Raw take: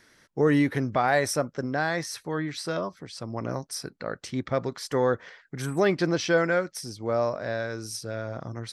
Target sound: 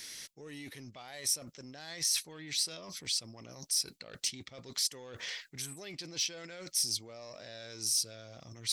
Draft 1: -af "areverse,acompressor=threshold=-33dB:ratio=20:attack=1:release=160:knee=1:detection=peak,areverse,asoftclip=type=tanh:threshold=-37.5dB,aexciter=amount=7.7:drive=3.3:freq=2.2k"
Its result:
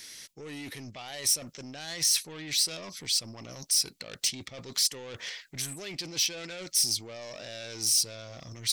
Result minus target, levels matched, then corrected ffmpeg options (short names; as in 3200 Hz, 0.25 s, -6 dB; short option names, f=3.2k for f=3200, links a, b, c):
compressor: peak gain reduction -8 dB
-af "areverse,acompressor=threshold=-41.5dB:ratio=20:attack=1:release=160:knee=1:detection=peak,areverse,asoftclip=type=tanh:threshold=-37.5dB,aexciter=amount=7.7:drive=3.3:freq=2.2k"